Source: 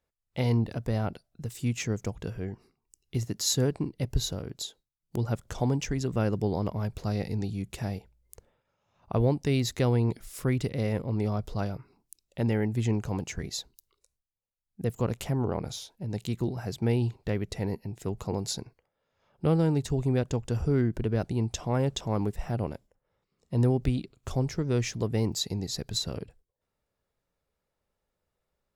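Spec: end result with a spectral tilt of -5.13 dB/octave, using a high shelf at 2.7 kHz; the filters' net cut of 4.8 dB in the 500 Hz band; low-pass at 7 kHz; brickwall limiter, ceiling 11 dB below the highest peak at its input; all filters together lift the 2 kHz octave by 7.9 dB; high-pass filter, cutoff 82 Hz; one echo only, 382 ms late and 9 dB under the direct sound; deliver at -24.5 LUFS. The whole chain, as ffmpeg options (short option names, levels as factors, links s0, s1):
-af "highpass=82,lowpass=7000,equalizer=f=500:t=o:g=-6.5,equalizer=f=2000:t=o:g=8,highshelf=f=2700:g=4.5,alimiter=limit=0.0794:level=0:latency=1,aecho=1:1:382:0.355,volume=2.66"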